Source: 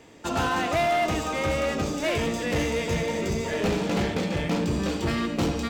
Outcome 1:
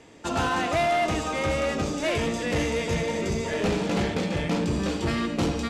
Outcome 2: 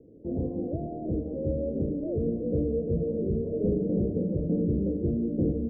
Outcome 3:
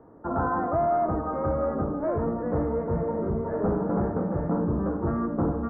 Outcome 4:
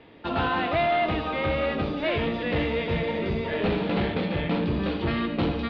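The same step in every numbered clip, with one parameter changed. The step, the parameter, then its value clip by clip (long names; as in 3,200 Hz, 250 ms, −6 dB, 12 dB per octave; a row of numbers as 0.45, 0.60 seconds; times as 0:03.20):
Butterworth low-pass, frequency: 12,000, 530, 1,400, 4,100 Hertz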